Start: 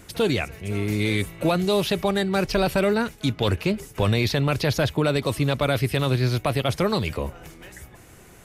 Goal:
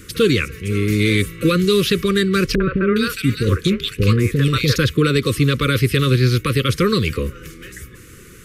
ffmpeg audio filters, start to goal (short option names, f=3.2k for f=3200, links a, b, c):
-filter_complex "[0:a]asuperstop=centerf=760:order=12:qfactor=1.3,asettb=1/sr,asplit=3[a][b][c];[a]atrim=end=2.554[d];[b]atrim=start=2.55:end=4.76,asetpts=PTS-STARTPTS,afade=t=in:d=0.004:c=qsin,afade=t=out:st=2.206:d=0.004:c=qsin,acrossover=split=500|2000[e][f][g];[f]adelay=50[h];[g]adelay=410[i];[e][h][i]amix=inputs=3:normalize=0,atrim=end_sample=97461[j];[c]atrim=start=4.756[k];[d][j]acrossfade=d=0.004:c1=hsin:c2=qsin[l];[l][k]acrossfade=d=0.004:c1=qsin:c2=hsin,volume=7dB"